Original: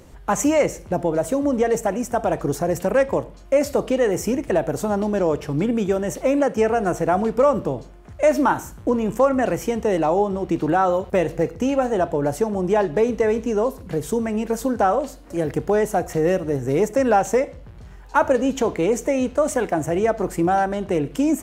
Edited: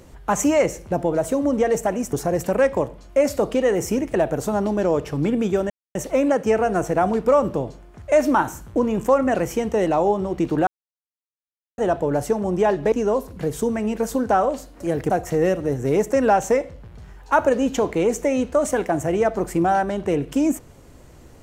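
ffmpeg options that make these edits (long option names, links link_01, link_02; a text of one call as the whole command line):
ffmpeg -i in.wav -filter_complex "[0:a]asplit=7[link_01][link_02][link_03][link_04][link_05][link_06][link_07];[link_01]atrim=end=2.132[link_08];[link_02]atrim=start=2.488:end=6.06,asetpts=PTS-STARTPTS,afade=type=out:start_time=3.568:duration=0.004:curve=hsin,apad=pad_dur=0.25[link_09];[link_03]atrim=start=6.06:end=10.78,asetpts=PTS-STARTPTS,afade=type=in:duration=0.004:curve=hsin,afade=type=out:start_time=4.716:duration=0.004:curve=hsin[link_10];[link_04]atrim=start=10.78:end=11.89,asetpts=PTS-STARTPTS,volume=0[link_11];[link_05]atrim=start=11.89:end=13.032,asetpts=PTS-STARTPTS,afade=type=in:duration=0.004:curve=hsin[link_12];[link_06]atrim=start=13.418:end=15.602[link_13];[link_07]atrim=start=15.928[link_14];[link_09][link_10][link_11][link_12]concat=n=4:v=0:a=1[link_15];[link_08][link_15]acrossfade=duration=0.004:curve1=hsin:curve2=hsin[link_16];[link_16][link_13]acrossfade=duration=0.004:curve1=hsin:curve2=hsin[link_17];[link_17][link_14]acrossfade=duration=0.004:curve1=hsin:curve2=hsin" out.wav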